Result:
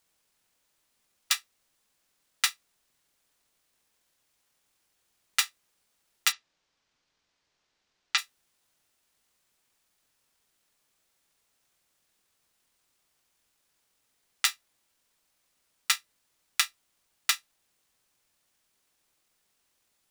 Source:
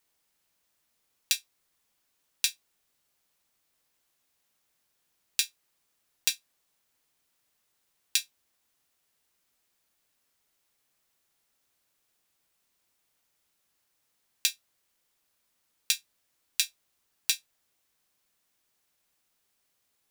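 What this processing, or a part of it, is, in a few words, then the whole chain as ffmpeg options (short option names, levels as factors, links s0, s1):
octave pedal: -filter_complex "[0:a]asplit=2[s0][s1];[s1]asetrate=22050,aresample=44100,atempo=2,volume=0.891[s2];[s0][s2]amix=inputs=2:normalize=0,asplit=3[s3][s4][s5];[s3]afade=t=out:st=6.31:d=0.02[s6];[s4]lowpass=f=6000:w=0.5412,lowpass=f=6000:w=1.3066,afade=t=in:st=6.31:d=0.02,afade=t=out:st=8.17:d=0.02[s7];[s5]afade=t=in:st=8.17:d=0.02[s8];[s6][s7][s8]amix=inputs=3:normalize=0,volume=0.891"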